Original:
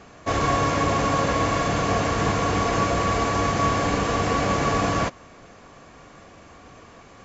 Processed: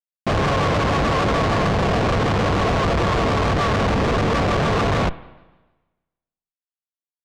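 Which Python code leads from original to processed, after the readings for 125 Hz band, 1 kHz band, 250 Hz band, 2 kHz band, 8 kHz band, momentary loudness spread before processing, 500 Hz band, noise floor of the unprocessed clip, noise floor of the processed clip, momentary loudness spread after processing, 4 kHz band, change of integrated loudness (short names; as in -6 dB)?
+5.5 dB, +1.0 dB, +3.5 dB, +3.0 dB, n/a, 1 LU, +3.5 dB, -48 dBFS, under -85 dBFS, 1 LU, +3.5 dB, +3.0 dB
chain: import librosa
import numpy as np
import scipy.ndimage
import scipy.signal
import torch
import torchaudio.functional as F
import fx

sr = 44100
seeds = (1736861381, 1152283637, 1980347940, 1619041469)

y = fx.peak_eq(x, sr, hz=290.0, db=-10.5, octaves=0.46)
y = fx.schmitt(y, sr, flips_db=-24.5)
y = fx.air_absorb(y, sr, metres=130.0)
y = fx.rev_spring(y, sr, rt60_s=1.2, pass_ms=(34, 56), chirp_ms=80, drr_db=16.0)
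y = fx.vibrato_shape(y, sr, shape='saw_down', rate_hz=6.7, depth_cents=100.0)
y = y * librosa.db_to_amplitude(6.5)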